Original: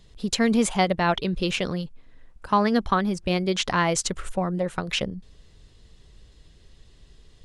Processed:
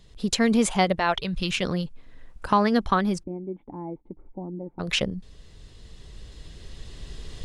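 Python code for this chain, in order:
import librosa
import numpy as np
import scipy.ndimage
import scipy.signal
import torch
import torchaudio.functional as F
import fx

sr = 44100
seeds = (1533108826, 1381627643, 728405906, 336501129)

y = fx.recorder_agc(x, sr, target_db=-13.0, rise_db_per_s=5.5, max_gain_db=30)
y = fx.peak_eq(y, sr, hz=fx.line((0.98, 170.0), (1.61, 670.0)), db=-13.5, octaves=1.0, at=(0.98, 1.61), fade=0.02)
y = fx.formant_cascade(y, sr, vowel='u', at=(3.22, 4.79), fade=0.02)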